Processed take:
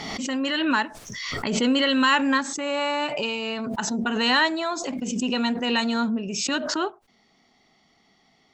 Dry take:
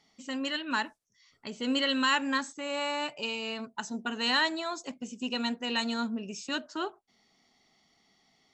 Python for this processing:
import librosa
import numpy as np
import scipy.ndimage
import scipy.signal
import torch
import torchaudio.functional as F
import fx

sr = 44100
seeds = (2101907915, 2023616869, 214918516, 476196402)

y = fx.high_shelf(x, sr, hz=4900.0, db=-10.0)
y = fx.pre_swell(y, sr, db_per_s=30.0)
y = y * 10.0 ** (7.5 / 20.0)